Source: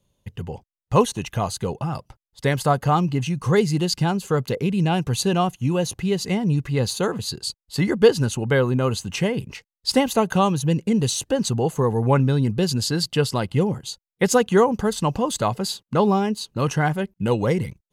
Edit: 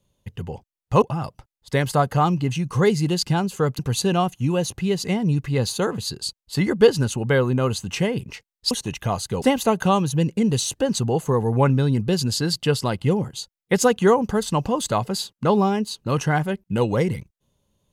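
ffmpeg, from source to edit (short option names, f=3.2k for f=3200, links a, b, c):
-filter_complex "[0:a]asplit=5[a][b][c][d][e];[a]atrim=end=1.022[f];[b]atrim=start=1.728:end=4.502[g];[c]atrim=start=4.998:end=9.922[h];[d]atrim=start=1.018:end=1.732[i];[e]atrim=start=9.918[j];[f][g]acrossfade=d=0.004:c1=hsin:c2=hsin[k];[k][h]acrossfade=d=0.004:c1=hsin:c2=hsin[l];[l][i]acrossfade=d=0.004:c1=hsin:c2=hsin[m];[m][j]acrossfade=d=0.004:c1=hsin:c2=hsin"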